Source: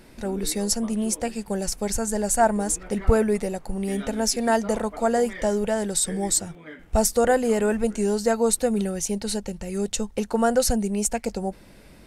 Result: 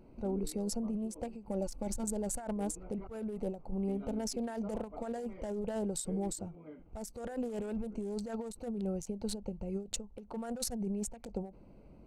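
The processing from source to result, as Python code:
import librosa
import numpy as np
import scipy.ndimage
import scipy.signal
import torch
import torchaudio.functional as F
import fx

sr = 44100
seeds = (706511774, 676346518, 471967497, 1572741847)

y = fx.wiener(x, sr, points=25)
y = fx.comb(y, sr, ms=3.5, depth=0.73, at=(1.48, 2.04))
y = fx.over_compress(y, sr, threshold_db=-27.0, ratio=-1.0)
y = fx.end_taper(y, sr, db_per_s=150.0)
y = y * librosa.db_to_amplitude(-9.0)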